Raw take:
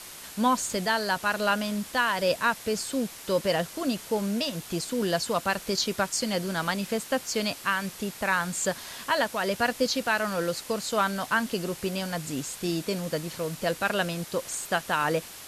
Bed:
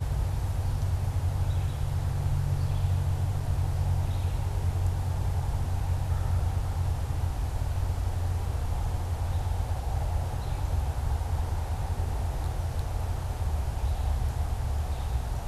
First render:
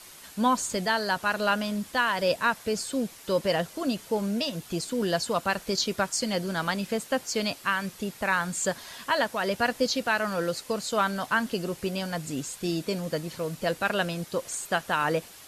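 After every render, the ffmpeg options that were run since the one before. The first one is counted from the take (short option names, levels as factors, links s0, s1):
-af "afftdn=nr=6:nf=-44"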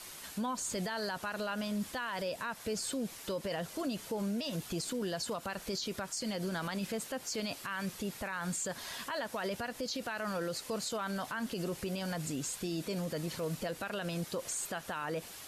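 -af "acompressor=threshold=0.0447:ratio=6,alimiter=level_in=1.58:limit=0.0631:level=0:latency=1:release=46,volume=0.631"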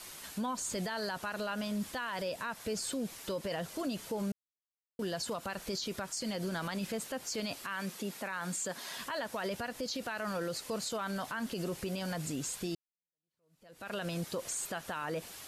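-filter_complex "[0:a]asettb=1/sr,asplit=3[s0][s1][s2];[s0]atrim=end=7.644[s3];[s1]atrim=start=7.64:end=8.97,asetpts=PTS-STARTPTS,afade=t=in:d=0.004:c=qsin,afade=t=out:st=1.326:d=0.004:c=qsin,highpass=f=170:w=0.5412,highpass=f=170:w=1.3066[s4];[s2]atrim=start=8.966[s5];[s3][s4]acrossfade=d=0.004:c1=hsin:c2=qsin[s6];[s6][s5]acrossfade=d=0.004:c1=qsin:c2=hsin,asplit=4[s7][s8][s9][s10];[s7]atrim=end=4.32,asetpts=PTS-STARTPTS,afade=t=out:st=4.316:d=0.004:c=hsin[s11];[s8]atrim=start=4.32:end=4.99,asetpts=PTS-STARTPTS,volume=0[s12];[s9]atrim=start=4.99:end=12.75,asetpts=PTS-STARTPTS,afade=t=in:d=0.004:c=hsin,afade=t=out:st=7.756:d=0.004:c=hsin[s13];[s10]atrim=start=12.75,asetpts=PTS-STARTPTS,afade=t=in:d=1.16:c=exp[s14];[s11][s12][s13][s14]concat=n=4:v=0:a=1"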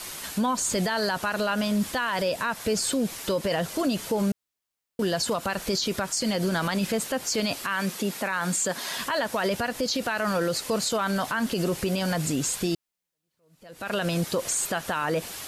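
-af "volume=3.35"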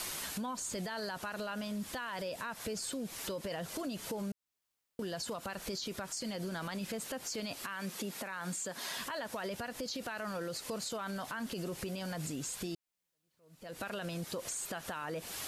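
-af "alimiter=level_in=1.33:limit=0.0631:level=0:latency=1:release=344,volume=0.75,acompressor=threshold=0.0112:ratio=2"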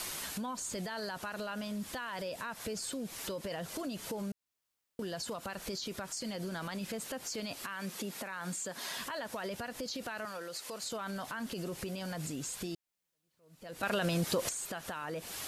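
-filter_complex "[0:a]asettb=1/sr,asplit=3[s0][s1][s2];[s0]atrim=end=10.254[s3];[s1]atrim=start=10.25:end=10.84,asetpts=PTS-STARTPTS,afade=t=in:d=0.004:c=qsin,afade=t=out:st=0.586:d=0.004:c=qsin,highpass=f=600:p=1[s4];[s2]atrim=start=10.836[s5];[s3][s4]acrossfade=d=0.004:c1=hsin:c2=qsin[s6];[s6][s5]acrossfade=d=0.004:c1=qsin:c2=hsin,asplit=3[s7][s8][s9];[s7]atrim=end=13.832[s10];[s8]atrim=start=13.828:end=14.492,asetpts=PTS-STARTPTS,volume=2.51[s11];[s9]atrim=start=14.488[s12];[s10][s11]acrossfade=d=0.004:c1=hsin:c2=hsin[s13];[s13][s12]acrossfade=d=0.004:c1=hsin:c2=hsin"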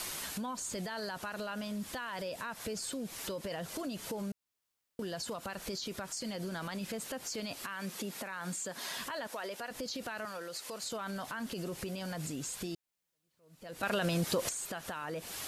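-filter_complex "[0:a]asettb=1/sr,asplit=3[s0][s1][s2];[s0]atrim=end=9.274[s3];[s1]atrim=start=9.27:end=9.71,asetpts=PTS-STARTPTS,afade=t=in:d=0.004:c=qsin,afade=t=out:st=0.436:d=0.004:c=qsin,highpass=350[s4];[s2]atrim=start=9.706[s5];[s3][s4]acrossfade=d=0.004:c1=hsin:c2=qsin[s6];[s6][s5]acrossfade=d=0.004:c1=qsin:c2=hsin"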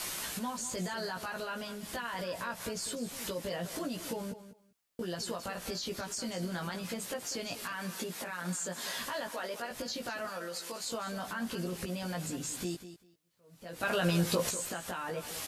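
-filter_complex "[0:a]asplit=2[s0][s1];[s1]adelay=17,volume=0.708[s2];[s0][s2]amix=inputs=2:normalize=0,aecho=1:1:196|392:0.237|0.0403"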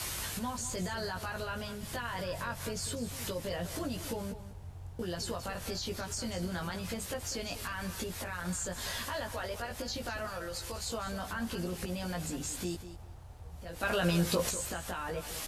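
-filter_complex "[1:a]volume=0.119[s0];[0:a][s0]amix=inputs=2:normalize=0"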